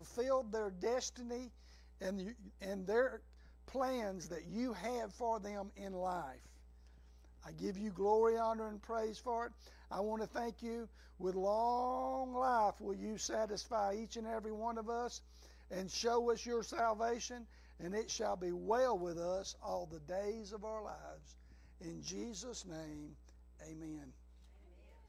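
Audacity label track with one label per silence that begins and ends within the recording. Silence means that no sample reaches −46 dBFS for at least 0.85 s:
6.350000	7.450000	silence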